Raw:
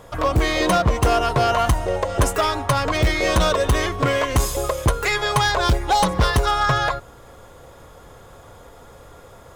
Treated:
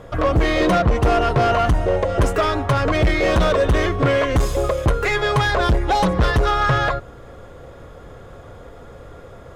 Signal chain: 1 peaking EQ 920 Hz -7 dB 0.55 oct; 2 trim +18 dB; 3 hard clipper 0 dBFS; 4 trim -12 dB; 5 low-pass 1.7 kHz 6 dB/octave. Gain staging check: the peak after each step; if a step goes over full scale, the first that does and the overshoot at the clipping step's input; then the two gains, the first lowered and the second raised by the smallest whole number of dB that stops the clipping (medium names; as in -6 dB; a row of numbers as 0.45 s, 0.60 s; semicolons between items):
-9.0 dBFS, +9.0 dBFS, 0.0 dBFS, -12.0 dBFS, -12.0 dBFS; step 2, 9.0 dB; step 2 +9 dB, step 4 -3 dB